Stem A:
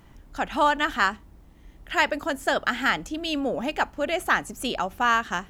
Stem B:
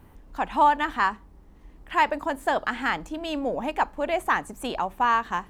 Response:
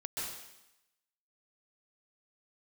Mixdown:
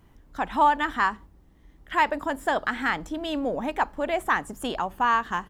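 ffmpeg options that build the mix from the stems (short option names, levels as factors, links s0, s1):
-filter_complex "[0:a]volume=0.398[s0];[1:a]agate=range=0.355:threshold=0.00891:ratio=16:detection=peak,adelay=0.8,volume=0.944,asplit=2[s1][s2];[s2]apad=whole_len=242350[s3];[s0][s3]sidechaincompress=threshold=0.0251:ratio=8:attack=16:release=167[s4];[s4][s1]amix=inputs=2:normalize=0"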